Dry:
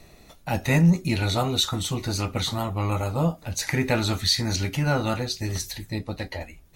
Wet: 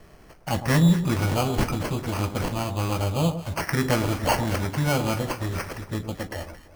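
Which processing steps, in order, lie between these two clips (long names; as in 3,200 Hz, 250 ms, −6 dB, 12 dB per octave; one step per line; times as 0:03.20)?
decimation without filtering 12×
delay that swaps between a low-pass and a high-pass 112 ms, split 1,100 Hz, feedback 59%, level −10 dB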